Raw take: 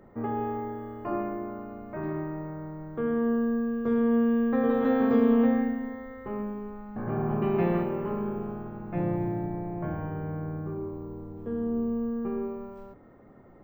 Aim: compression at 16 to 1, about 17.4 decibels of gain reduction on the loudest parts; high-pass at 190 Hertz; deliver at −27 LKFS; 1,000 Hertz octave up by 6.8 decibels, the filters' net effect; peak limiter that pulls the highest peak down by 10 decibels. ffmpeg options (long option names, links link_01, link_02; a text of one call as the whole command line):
ffmpeg -i in.wav -af "highpass=190,equalizer=frequency=1000:width_type=o:gain=9,acompressor=threshold=-35dB:ratio=16,volume=16.5dB,alimiter=limit=-19dB:level=0:latency=1" out.wav